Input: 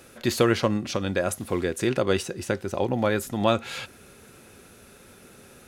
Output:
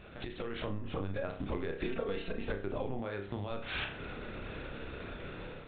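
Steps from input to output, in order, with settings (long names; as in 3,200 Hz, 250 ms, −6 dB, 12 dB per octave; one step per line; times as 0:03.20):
brickwall limiter −16.5 dBFS, peak gain reduction 10.5 dB
linear-prediction vocoder at 8 kHz pitch kept
0:00.64–0:01.10: low-pass filter 1,200 Hz 6 dB per octave
0:01.84–0:02.49: comb filter 4.4 ms, depth 68%
convolution reverb, pre-delay 30 ms, DRR 4.5 dB
downward compressor 12 to 1, threshold −39 dBFS, peak gain reduction 20 dB
0:02.99–0:03.51: high-pass filter 46 Hz
automatic gain control gain up to 8 dB
level −1 dB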